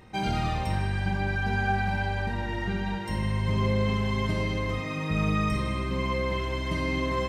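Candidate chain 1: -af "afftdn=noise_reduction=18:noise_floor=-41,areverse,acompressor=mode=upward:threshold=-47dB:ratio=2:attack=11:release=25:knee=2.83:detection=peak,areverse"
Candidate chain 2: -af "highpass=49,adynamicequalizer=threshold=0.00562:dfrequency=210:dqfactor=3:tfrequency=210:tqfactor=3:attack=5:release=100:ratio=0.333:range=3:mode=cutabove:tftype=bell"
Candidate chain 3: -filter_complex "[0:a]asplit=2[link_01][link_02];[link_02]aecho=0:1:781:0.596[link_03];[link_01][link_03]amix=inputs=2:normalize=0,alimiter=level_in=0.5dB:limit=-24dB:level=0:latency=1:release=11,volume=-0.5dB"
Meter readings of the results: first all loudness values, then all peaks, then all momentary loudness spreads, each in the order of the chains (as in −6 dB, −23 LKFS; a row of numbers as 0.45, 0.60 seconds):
−28.5, −29.0, −32.0 LKFS; −15.5, −14.5, −24.5 dBFS; 5, 5, 1 LU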